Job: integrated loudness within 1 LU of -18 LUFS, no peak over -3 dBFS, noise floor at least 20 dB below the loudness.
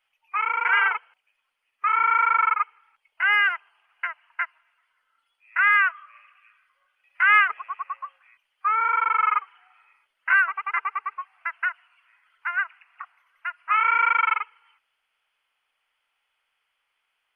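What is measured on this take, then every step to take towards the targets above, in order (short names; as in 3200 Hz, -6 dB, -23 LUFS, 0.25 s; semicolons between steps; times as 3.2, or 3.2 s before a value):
loudness -22.5 LUFS; peak -8.0 dBFS; loudness target -18.0 LUFS
-> gain +4.5 dB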